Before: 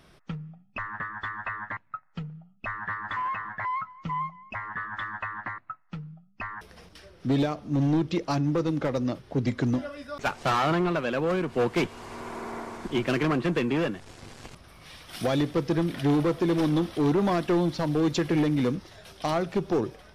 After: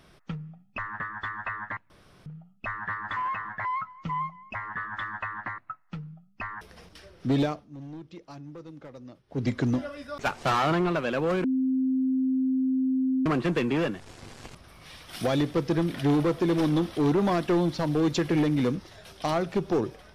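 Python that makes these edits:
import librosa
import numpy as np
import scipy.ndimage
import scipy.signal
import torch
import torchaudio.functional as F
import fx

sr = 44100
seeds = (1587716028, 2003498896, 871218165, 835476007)

y = fx.edit(x, sr, fx.room_tone_fill(start_s=1.9, length_s=0.36),
    fx.fade_down_up(start_s=7.49, length_s=1.96, db=-17.5, fade_s=0.17),
    fx.bleep(start_s=11.44, length_s=1.82, hz=261.0, db=-22.0), tone=tone)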